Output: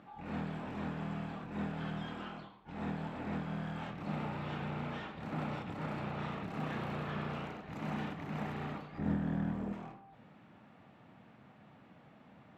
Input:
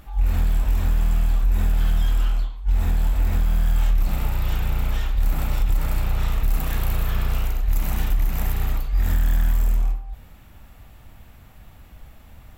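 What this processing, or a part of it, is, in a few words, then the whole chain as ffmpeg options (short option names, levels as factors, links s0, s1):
phone in a pocket: -filter_complex "[0:a]highpass=f=150:w=0.5412,highpass=f=150:w=1.3066,lowpass=3800,equalizer=f=200:t=o:w=1.5:g=2,highshelf=f=2500:g=-10,asettb=1/sr,asplit=3[s0][s1][s2];[s0]atrim=end=8.984[s3];[s1]atrim=start=8.98:end=9.73,asetpts=PTS-STARTPTS,afade=t=in:d=0.004:c=qsin,afade=t=out:st=0.746:d=0.004:c=qsin,tiltshelf=f=780:g=7.5[s4];[s2]atrim=start=9.726[s5];[s3][s4]acrossfade=d=0.004:c1=hsin:c2=qsin[s6];[s6][s5]acrossfade=d=0.004:c1=qsin:c2=hsin,volume=0.631"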